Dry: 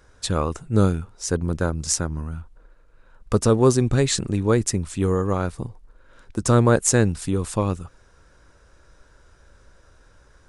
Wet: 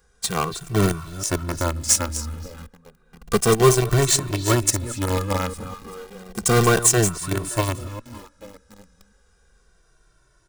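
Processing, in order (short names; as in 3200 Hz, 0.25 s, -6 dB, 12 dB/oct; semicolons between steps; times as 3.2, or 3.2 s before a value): reverse delay 0.205 s, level -10.5 dB; high shelf 6200 Hz +12 dB; on a send: delay with a stepping band-pass 0.281 s, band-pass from 3300 Hz, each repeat -1.4 oct, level -11 dB; on the sum: dynamic EQ 1200 Hz, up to +4 dB, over -41 dBFS, Q 1.9; in parallel at -5 dB: companded quantiser 2-bit; on the sum: maximiser -4.5 dB; endless flanger 2.1 ms -0.32 Hz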